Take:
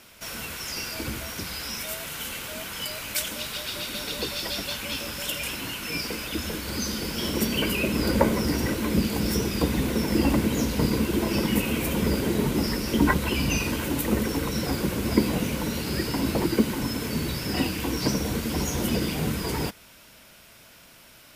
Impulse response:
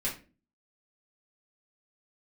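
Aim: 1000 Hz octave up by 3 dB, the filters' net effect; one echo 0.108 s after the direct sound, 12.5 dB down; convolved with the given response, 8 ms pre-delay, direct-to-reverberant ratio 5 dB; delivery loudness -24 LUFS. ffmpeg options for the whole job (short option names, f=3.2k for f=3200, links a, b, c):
-filter_complex "[0:a]equalizer=f=1k:t=o:g=3.5,aecho=1:1:108:0.237,asplit=2[a][b];[1:a]atrim=start_sample=2205,adelay=8[c];[b][c]afir=irnorm=-1:irlink=0,volume=-10dB[d];[a][d]amix=inputs=2:normalize=0,volume=0.5dB"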